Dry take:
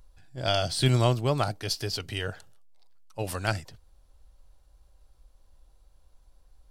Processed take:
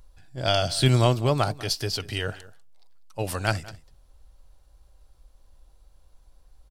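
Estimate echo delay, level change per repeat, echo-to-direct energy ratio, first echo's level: 195 ms, repeats not evenly spaced, −19.5 dB, −19.5 dB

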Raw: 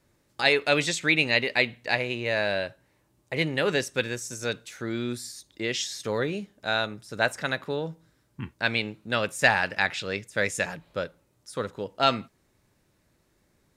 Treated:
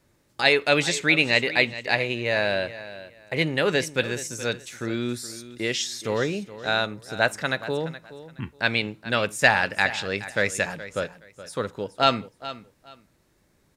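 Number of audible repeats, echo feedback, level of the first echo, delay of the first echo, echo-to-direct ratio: 2, 22%, −15.0 dB, 421 ms, −15.0 dB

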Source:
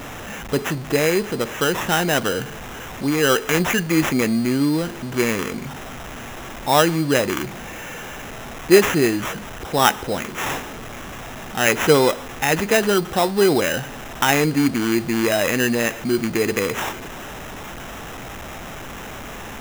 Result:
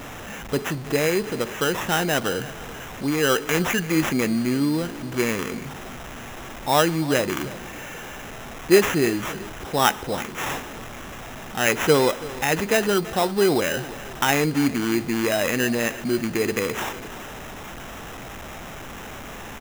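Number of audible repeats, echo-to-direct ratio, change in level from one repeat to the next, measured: 2, −17.0 dB, −8.5 dB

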